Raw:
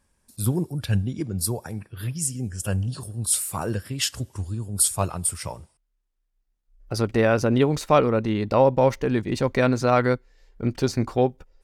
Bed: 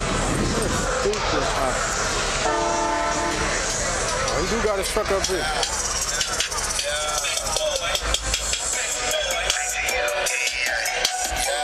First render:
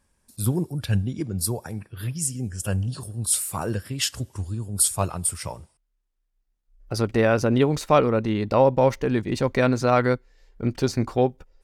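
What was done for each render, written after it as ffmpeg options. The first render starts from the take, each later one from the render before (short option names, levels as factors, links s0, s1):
-af anull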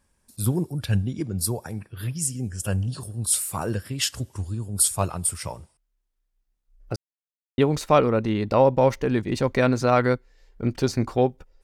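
-filter_complex "[0:a]asplit=3[s0][s1][s2];[s0]atrim=end=6.96,asetpts=PTS-STARTPTS,afade=t=out:st=6.956:d=0.004:c=hsin[s3];[s1]atrim=start=6.96:end=7.58,asetpts=PTS-STARTPTS,volume=0[s4];[s2]atrim=start=7.58,asetpts=PTS-STARTPTS,afade=t=in:d=0.004:c=hsin[s5];[s3][s4][s5]concat=n=3:v=0:a=1"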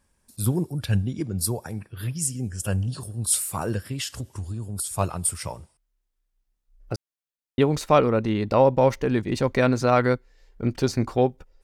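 -filter_complex "[0:a]asettb=1/sr,asplit=3[s0][s1][s2];[s0]atrim=end=3.944[s3];[s1]atrim=start=3.94:end=4.96,asetpts=PTS-STARTPTS,afade=t=in:d=0.004:c=qsin,afade=t=out:st=1.016:d=0.004:c=qsin,acompressor=threshold=0.0501:ratio=6:attack=3.2:release=140:knee=1:detection=peak[s4];[s2]atrim=start=4.956[s5];[s3][s4]acrossfade=d=0.004:c1=hsin:c2=qsin[s6];[s6][s5]acrossfade=d=0.004:c1=qsin:c2=hsin"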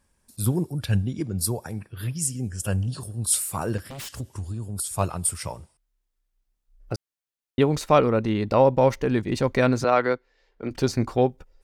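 -filter_complex "[0:a]asplit=3[s0][s1][s2];[s0]afade=t=out:st=3.77:d=0.02[s3];[s1]aeval=exprs='0.0282*(abs(mod(val(0)/0.0282+3,4)-2)-1)':c=same,afade=t=in:st=3.77:d=0.02,afade=t=out:st=4.18:d=0.02[s4];[s2]afade=t=in:st=4.18:d=0.02[s5];[s3][s4][s5]amix=inputs=3:normalize=0,asettb=1/sr,asplit=3[s6][s7][s8];[s6]atrim=end=9.844[s9];[s7]atrim=start=9.84:end=10.71,asetpts=PTS-STARTPTS,afade=t=in:d=0.004:c=qsin,afade=t=out:st=0.866:d=0.004:c=qsin,acrossover=split=280 5300:gain=0.2 1 0.158[s10][s11][s12];[s10][s11][s12]amix=inputs=3:normalize=0[s13];[s8]atrim=start=10.706[s14];[s9][s13]acrossfade=d=0.004:c1=hsin:c2=qsin[s15];[s15][s14]acrossfade=d=0.004:c1=qsin:c2=hsin"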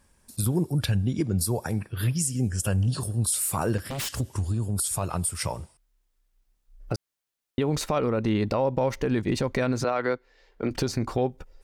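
-filter_complex "[0:a]asplit=2[s0][s1];[s1]acompressor=threshold=0.0398:ratio=6,volume=0.891[s2];[s0][s2]amix=inputs=2:normalize=0,alimiter=limit=0.168:level=0:latency=1:release=117"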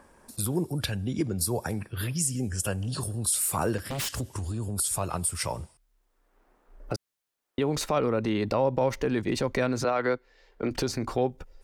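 -filter_complex "[0:a]acrossover=split=250|1600[s0][s1][s2];[s0]alimiter=level_in=1.68:limit=0.0631:level=0:latency=1,volume=0.596[s3];[s1]acompressor=mode=upward:threshold=0.00501:ratio=2.5[s4];[s3][s4][s2]amix=inputs=3:normalize=0"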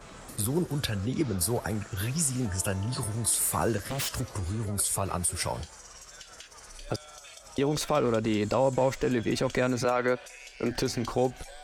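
-filter_complex "[1:a]volume=0.0631[s0];[0:a][s0]amix=inputs=2:normalize=0"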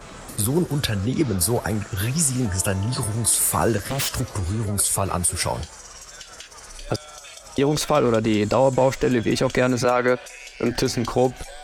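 -af "volume=2.24"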